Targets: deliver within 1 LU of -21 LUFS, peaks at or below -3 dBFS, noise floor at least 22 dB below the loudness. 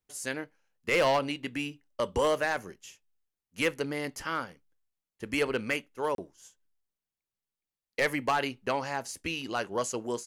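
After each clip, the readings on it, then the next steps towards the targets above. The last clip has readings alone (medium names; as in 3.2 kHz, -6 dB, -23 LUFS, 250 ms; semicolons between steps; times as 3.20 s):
clipped samples 0.6%; clipping level -19.5 dBFS; dropouts 1; longest dropout 32 ms; loudness -31.0 LUFS; peak level -19.5 dBFS; loudness target -21.0 LUFS
-> clip repair -19.5 dBFS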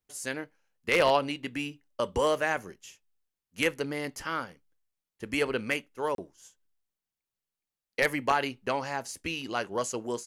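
clipped samples 0.0%; dropouts 1; longest dropout 32 ms
-> interpolate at 6.15 s, 32 ms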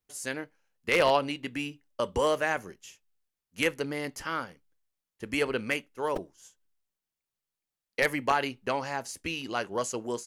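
dropouts 0; loudness -30.5 LUFS; peak level -10.5 dBFS; loudness target -21.0 LUFS
-> trim +9.5 dB; peak limiter -3 dBFS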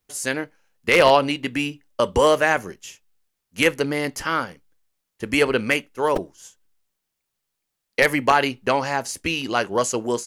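loudness -21.0 LUFS; peak level -3.0 dBFS; noise floor -80 dBFS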